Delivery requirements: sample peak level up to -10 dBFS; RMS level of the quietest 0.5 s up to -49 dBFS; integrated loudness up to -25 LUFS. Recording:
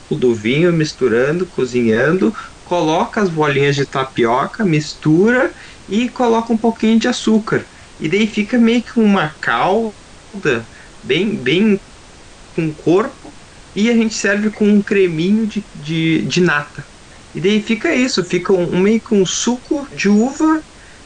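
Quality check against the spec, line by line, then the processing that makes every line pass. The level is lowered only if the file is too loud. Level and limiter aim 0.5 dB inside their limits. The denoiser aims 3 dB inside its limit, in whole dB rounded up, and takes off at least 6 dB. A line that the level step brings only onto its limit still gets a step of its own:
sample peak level -4.0 dBFS: fail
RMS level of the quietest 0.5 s -40 dBFS: fail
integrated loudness -15.5 LUFS: fail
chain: gain -10 dB

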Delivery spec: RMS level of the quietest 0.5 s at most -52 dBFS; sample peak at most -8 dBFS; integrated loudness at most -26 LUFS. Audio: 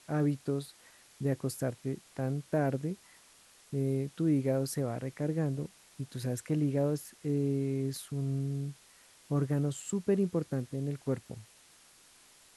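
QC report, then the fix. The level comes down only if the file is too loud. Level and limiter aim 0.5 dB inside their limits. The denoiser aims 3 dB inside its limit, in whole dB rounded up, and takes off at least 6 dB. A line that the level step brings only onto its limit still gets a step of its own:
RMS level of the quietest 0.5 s -60 dBFS: OK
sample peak -18.0 dBFS: OK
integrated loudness -33.5 LUFS: OK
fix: none

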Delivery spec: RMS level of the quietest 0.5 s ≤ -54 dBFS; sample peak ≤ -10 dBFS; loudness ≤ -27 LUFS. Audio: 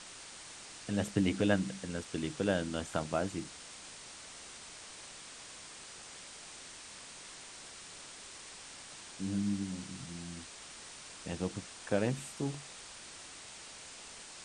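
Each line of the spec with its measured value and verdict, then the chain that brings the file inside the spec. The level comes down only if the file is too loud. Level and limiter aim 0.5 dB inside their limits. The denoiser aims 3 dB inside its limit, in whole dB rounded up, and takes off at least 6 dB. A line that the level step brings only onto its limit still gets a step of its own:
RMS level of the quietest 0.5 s -50 dBFS: fail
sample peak -13.5 dBFS: OK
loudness -39.0 LUFS: OK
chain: denoiser 7 dB, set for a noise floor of -50 dBFS

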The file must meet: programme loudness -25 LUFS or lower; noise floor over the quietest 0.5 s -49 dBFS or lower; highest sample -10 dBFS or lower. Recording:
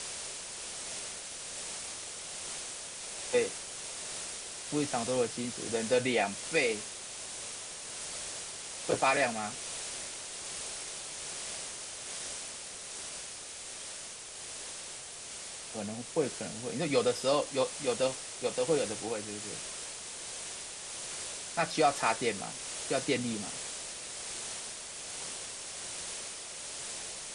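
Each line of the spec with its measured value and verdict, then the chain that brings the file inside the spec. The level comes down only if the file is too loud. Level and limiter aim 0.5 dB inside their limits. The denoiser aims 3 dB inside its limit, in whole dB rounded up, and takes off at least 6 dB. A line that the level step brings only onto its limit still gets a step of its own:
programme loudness -34.5 LUFS: OK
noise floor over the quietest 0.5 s -44 dBFS: fail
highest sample -14.5 dBFS: OK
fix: denoiser 8 dB, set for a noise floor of -44 dBFS

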